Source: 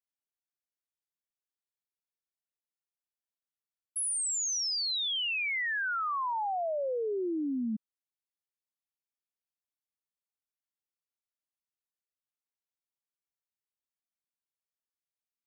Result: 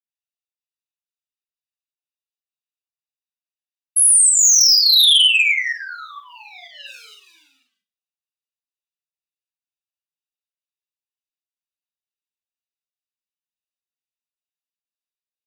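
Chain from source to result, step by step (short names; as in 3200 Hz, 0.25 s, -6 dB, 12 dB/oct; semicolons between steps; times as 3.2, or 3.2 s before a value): Wiener smoothing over 41 samples; pump 126 bpm, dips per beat 1, -24 dB, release 0.136 s; Chebyshev high-pass 2900 Hz, order 3; comb 7 ms, depth 98%; Schroeder reverb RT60 0.32 s, combs from 33 ms, DRR -0.5 dB; sine folder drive 6 dB, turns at -17 dBFS; gain +9 dB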